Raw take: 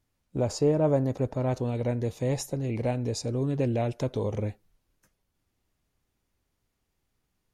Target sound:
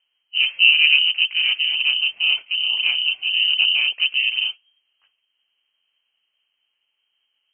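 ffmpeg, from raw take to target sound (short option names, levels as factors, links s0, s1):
-filter_complex "[0:a]asplit=2[s0][s1];[s1]asetrate=55563,aresample=44100,atempo=0.793701,volume=1[s2];[s0][s2]amix=inputs=2:normalize=0,equalizer=f=340:t=o:w=2.7:g=10,lowpass=f=2700:t=q:w=0.5098,lowpass=f=2700:t=q:w=0.6013,lowpass=f=2700:t=q:w=0.9,lowpass=f=2700:t=q:w=2.563,afreqshift=-3200,volume=0.75"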